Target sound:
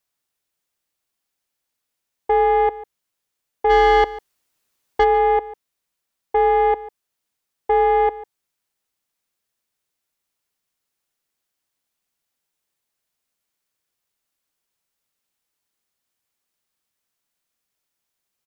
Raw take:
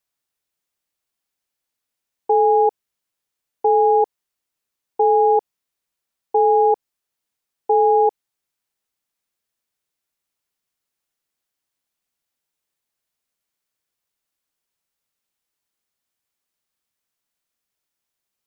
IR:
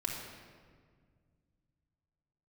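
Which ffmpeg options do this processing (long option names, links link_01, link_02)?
-filter_complex "[0:a]asplit=3[link_01][link_02][link_03];[link_01]afade=type=out:start_time=3.69:duration=0.02[link_04];[link_02]acontrast=79,afade=type=in:start_time=3.69:duration=0.02,afade=type=out:start_time=5.03:duration=0.02[link_05];[link_03]afade=type=in:start_time=5.03:duration=0.02[link_06];[link_04][link_05][link_06]amix=inputs=3:normalize=0,asoftclip=type=tanh:threshold=-12.5dB,asplit=2[link_07][link_08];[link_08]aecho=0:1:146:0.126[link_09];[link_07][link_09]amix=inputs=2:normalize=0,volume=2dB"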